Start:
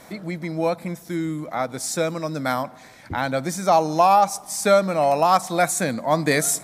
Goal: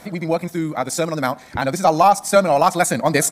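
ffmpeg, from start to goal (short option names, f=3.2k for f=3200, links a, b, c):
-af "aeval=exprs='0.562*(cos(1*acos(clip(val(0)/0.562,-1,1)))-cos(1*PI/2))+0.00447*(cos(4*acos(clip(val(0)/0.562,-1,1)))-cos(4*PI/2))':c=same,atempo=2,volume=4dB"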